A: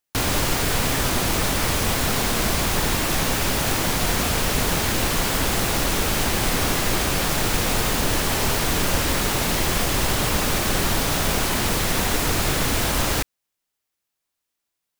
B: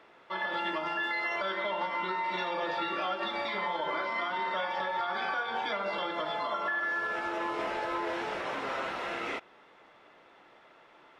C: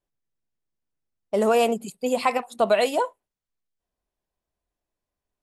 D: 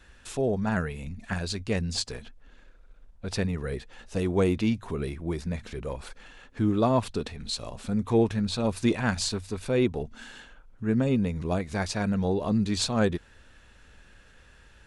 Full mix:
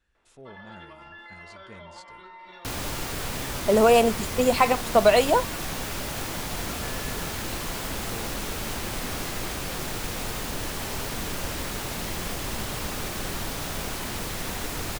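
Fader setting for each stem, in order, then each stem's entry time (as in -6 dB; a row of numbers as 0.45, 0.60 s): -10.0, -13.5, +2.5, -20.0 dB; 2.50, 0.15, 2.35, 0.00 s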